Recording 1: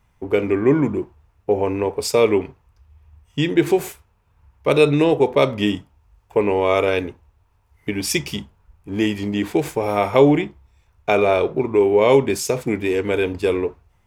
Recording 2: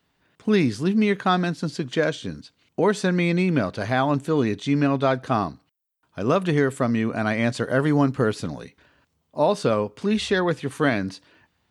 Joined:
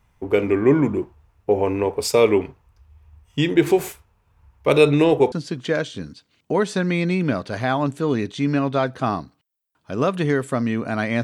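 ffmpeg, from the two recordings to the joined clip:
ffmpeg -i cue0.wav -i cue1.wav -filter_complex "[0:a]apad=whole_dur=11.23,atrim=end=11.23,atrim=end=5.322[link_01];[1:a]atrim=start=1.598:end=7.51[link_02];[link_01][link_02]acrossfade=duration=0.004:curve1=hsin:curve2=hsin" out.wav

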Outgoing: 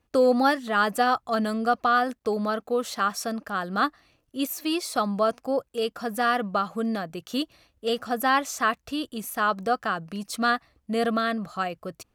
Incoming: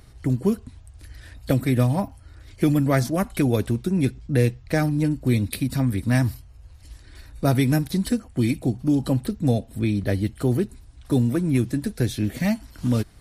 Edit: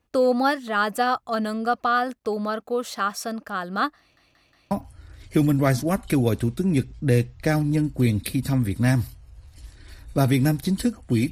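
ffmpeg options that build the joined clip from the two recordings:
ffmpeg -i cue0.wav -i cue1.wav -filter_complex "[0:a]apad=whole_dur=11.31,atrim=end=11.31,asplit=4[link_01][link_02][link_03][link_04];[link_01]atrim=end=4.172[link_05];[link_02]atrim=start=3.988:end=4.172[link_06];[link_03]atrim=start=3.988:end=4.172[link_07];[link_04]atrim=start=3.988:end=4.172[link_08];[1:a]atrim=start=1.978:end=8.58[link_09];[link_05][link_06]acrossfade=duration=0.004:curve1=hsin:curve2=hsin[link_10];[link_10][link_07]acrossfade=duration=0.004:curve1=hsin:curve2=hsin[link_11];[link_11][link_08]acrossfade=duration=0.004:curve1=hsin:curve2=hsin[link_12];[link_12][link_09]acrossfade=duration=0.004:curve1=hsin:curve2=hsin" out.wav

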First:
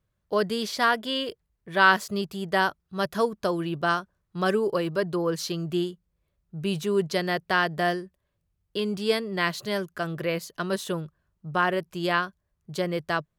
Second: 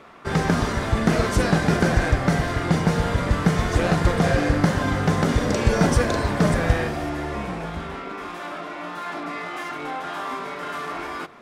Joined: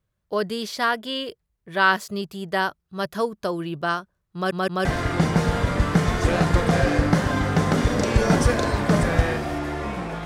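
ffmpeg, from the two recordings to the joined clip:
ffmpeg -i cue0.wav -i cue1.wav -filter_complex "[0:a]apad=whole_dur=10.25,atrim=end=10.25,asplit=3[link_01][link_02][link_03];[link_01]atrim=end=4.512[link_04];[link_02]atrim=start=4.338:end=4.512[link_05];[link_03]atrim=start=4.338:end=4.512[link_06];[1:a]atrim=start=2.358:end=7.76[link_07];[link_04][link_05]acrossfade=duration=0.004:curve1=hsin:curve2=hsin[link_08];[link_08][link_06]acrossfade=duration=0.004:curve1=hsin:curve2=hsin[link_09];[link_09][link_07]acrossfade=duration=0.004:curve1=hsin:curve2=hsin" out.wav

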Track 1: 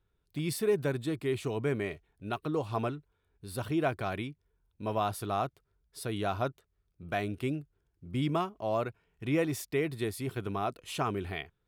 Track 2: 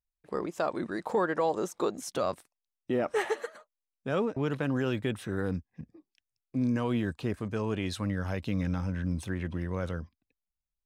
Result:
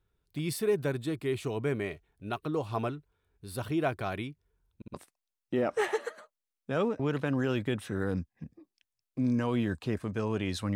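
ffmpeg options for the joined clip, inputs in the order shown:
ffmpeg -i cue0.wav -i cue1.wav -filter_complex "[0:a]apad=whole_dur=10.75,atrim=end=10.75,asplit=3[link_01][link_02][link_03];[link_01]atrim=end=4.822[link_04];[link_02]atrim=start=4.758:end=4.822[link_05];[link_03]atrim=start=4.758:end=4.822[link_06];[1:a]atrim=start=2.308:end=8.12[link_07];[link_04][link_05]acrossfade=duration=0.004:curve1=hsin:curve2=hsin[link_08];[link_08][link_06]acrossfade=duration=0.004:curve1=hsin:curve2=hsin[link_09];[link_09][link_07]acrossfade=duration=0.004:curve1=hsin:curve2=hsin" out.wav

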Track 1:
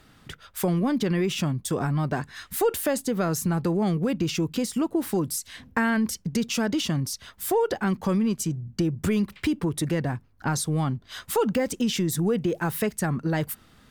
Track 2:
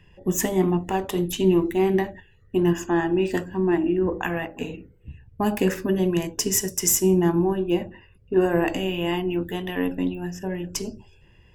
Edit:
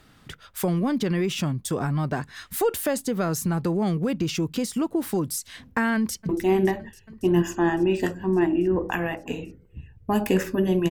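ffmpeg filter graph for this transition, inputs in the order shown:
ffmpeg -i cue0.wav -i cue1.wav -filter_complex "[0:a]apad=whole_dur=10.9,atrim=end=10.9,atrim=end=6.292[link_01];[1:a]atrim=start=1.598:end=6.21[link_02];[link_01][link_02]acrossfade=duration=0.004:curve1=hsin:curve2=hsin,asplit=2[link_03][link_04];[link_04]afade=type=in:start_time=5.95:duration=0.01,afade=type=out:start_time=6.29:duration=0.01,aecho=0:1:280|560|840|1120|1400|1680|1960|2240|2520|2800|3080|3360:0.133352|0.113349|0.0963469|0.0818949|0.0696107|0.0591691|0.0502937|0.0427496|0.0363372|0.0308866|0.0262536|0.0223156[link_05];[link_03][link_05]amix=inputs=2:normalize=0" out.wav

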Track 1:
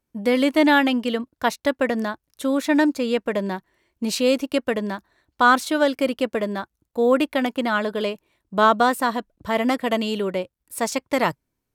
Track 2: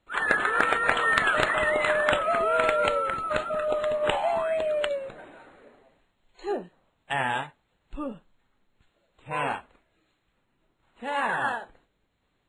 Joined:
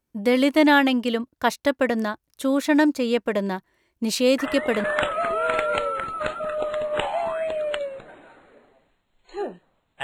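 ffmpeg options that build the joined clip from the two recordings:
ffmpeg -i cue0.wav -i cue1.wav -filter_complex "[1:a]asplit=2[link_01][link_02];[0:a]apad=whole_dur=10.03,atrim=end=10.03,atrim=end=4.842[link_03];[link_02]atrim=start=1.938:end=7.13[link_04];[link_01]atrim=start=1.48:end=1.94,asetpts=PTS-STARTPTS,volume=-6.5dB,afade=type=in:duration=0.004:curve=hsin,afade=type=out:start_time=0.456:duration=0.004:curve=hsin,adelay=4380[link_05];[link_03][link_04]acrossfade=duration=0.004:curve1=hsin:curve2=hsin[link_06];[link_06][link_05]amix=inputs=2:normalize=0" out.wav

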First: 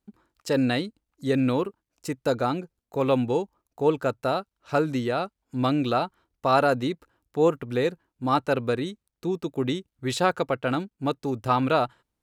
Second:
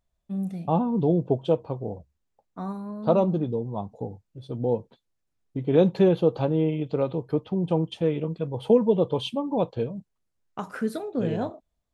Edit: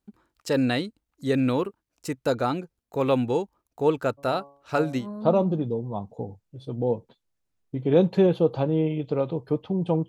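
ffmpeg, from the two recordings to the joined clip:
ffmpeg -i cue0.wav -i cue1.wav -filter_complex "[0:a]asplit=3[link_01][link_02][link_03];[link_01]afade=type=out:start_time=4.17:duration=0.02[link_04];[link_02]bandreject=frequency=140.7:width_type=h:width=4,bandreject=frequency=281.4:width_type=h:width=4,bandreject=frequency=422.1:width_type=h:width=4,bandreject=frequency=562.8:width_type=h:width=4,bandreject=frequency=703.5:width_type=h:width=4,bandreject=frequency=844.2:width_type=h:width=4,bandreject=frequency=984.9:width_type=h:width=4,bandreject=frequency=1125.6:width_type=h:width=4,afade=type=in:start_time=4.17:duration=0.02,afade=type=out:start_time=5.07:duration=0.02[link_05];[link_03]afade=type=in:start_time=5.07:duration=0.02[link_06];[link_04][link_05][link_06]amix=inputs=3:normalize=0,apad=whole_dur=10.08,atrim=end=10.08,atrim=end=5.07,asetpts=PTS-STARTPTS[link_07];[1:a]atrim=start=2.79:end=7.9,asetpts=PTS-STARTPTS[link_08];[link_07][link_08]acrossfade=duration=0.1:curve1=tri:curve2=tri" out.wav

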